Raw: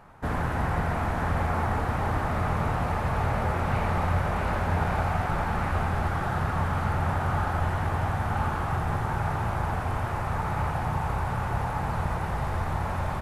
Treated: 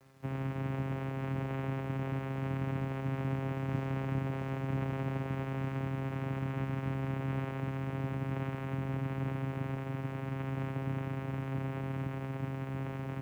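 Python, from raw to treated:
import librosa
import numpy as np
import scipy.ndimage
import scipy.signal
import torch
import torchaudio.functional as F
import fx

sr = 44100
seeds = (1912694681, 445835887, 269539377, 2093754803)

p1 = x + fx.echo_diffused(x, sr, ms=508, feedback_pct=78, wet_db=-16.0, dry=0)
p2 = fx.vocoder(p1, sr, bands=4, carrier='saw', carrier_hz=134.0)
p3 = fx.quant_dither(p2, sr, seeds[0], bits=10, dither='none')
y = p3 * librosa.db_to_amplitude(-6.0)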